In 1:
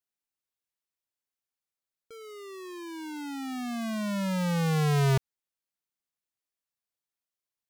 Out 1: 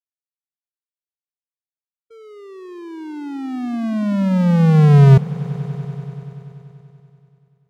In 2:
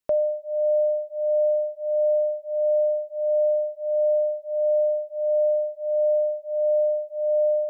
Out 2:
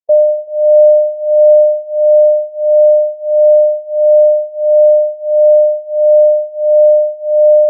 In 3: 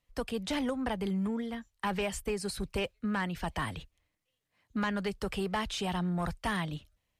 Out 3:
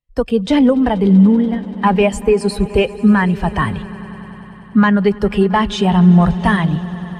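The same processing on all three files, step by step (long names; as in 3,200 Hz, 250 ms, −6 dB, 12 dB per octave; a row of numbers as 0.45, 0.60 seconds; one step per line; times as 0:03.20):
echo that builds up and dies away 96 ms, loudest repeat 5, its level −17.5 dB
every bin expanded away from the loudest bin 1.5 to 1
normalise the peak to −1.5 dBFS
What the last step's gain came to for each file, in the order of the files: +16.0, +14.5, +20.0 decibels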